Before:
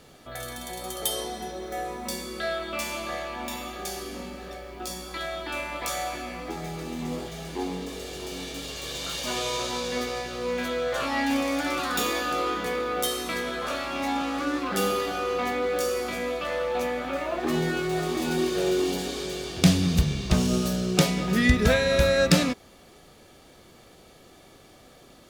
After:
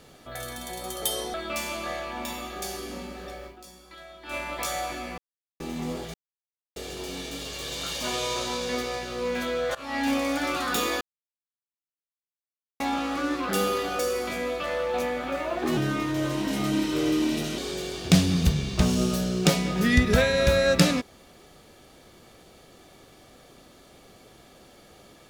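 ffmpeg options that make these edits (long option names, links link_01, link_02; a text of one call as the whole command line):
ffmpeg -i in.wav -filter_complex "[0:a]asplit=14[link_01][link_02][link_03][link_04][link_05][link_06][link_07][link_08][link_09][link_10][link_11][link_12][link_13][link_14];[link_01]atrim=end=1.342[link_15];[link_02]atrim=start=2.568:end=4.84,asetpts=PTS-STARTPTS,afade=type=out:start_time=2.122:duration=0.15:curve=qua:silence=0.223872[link_16];[link_03]atrim=start=4.84:end=5.43,asetpts=PTS-STARTPTS,volume=-13dB[link_17];[link_04]atrim=start=5.43:end=6.41,asetpts=PTS-STARTPTS,afade=type=in:duration=0.15:curve=qua:silence=0.223872,afade=type=out:start_time=0.976:duration=0.004:curve=hsin[link_18];[link_05]atrim=start=6.41:end=6.83,asetpts=PTS-STARTPTS,volume=0[link_19];[link_06]atrim=start=6.83:end=7.37,asetpts=PTS-STARTPTS,afade=type=in:duration=0.004:curve=hsin,afade=type=out:start_time=0.536:duration=0.004:curve=hsin[link_20];[link_07]atrim=start=7.37:end=7.99,asetpts=PTS-STARTPTS,volume=0[link_21];[link_08]atrim=start=7.99:end=10.98,asetpts=PTS-STARTPTS,afade=type=in:duration=0.004:curve=hsin,afade=type=out:start_time=2.986:duration=0.004:curve=hsin:silence=0.0891251[link_22];[link_09]atrim=start=10.98:end=12.24,asetpts=PTS-STARTPTS,afade=type=in:duration=0.32:silence=0.0891251,afade=type=out:start_time=1.256:duration=0.004:curve=hsin[link_23];[link_10]atrim=start=12.24:end=14.03,asetpts=PTS-STARTPTS,volume=0[link_24];[link_11]atrim=start=14.03:end=15.222,asetpts=PTS-STARTPTS,afade=type=in:duration=0.004:curve=hsin[link_25];[link_12]atrim=start=15.798:end=17.584[link_26];[link_13]atrim=start=17.58:end=19.1,asetpts=PTS-STARTPTS,asetrate=37044,aresample=44100[link_27];[link_14]atrim=start=19.096[link_28];[link_16][link_17][link_18][link_19][link_20][link_21][link_22][link_23][link_24][link_25]concat=n=10:v=0:a=1[link_29];[link_15][link_29]acrossfade=duration=0.004:curve1=hsin:curve2=hsin[link_30];[link_30][link_26]acrossfade=duration=0.004:curve1=hsin:curve2=hsin[link_31];[link_31][link_27]acrossfade=duration=0.004:curve1=hsin:curve2=hsin[link_32];[link_32][link_28]acrossfade=duration=0.004:curve1=hsin:curve2=hsin" out.wav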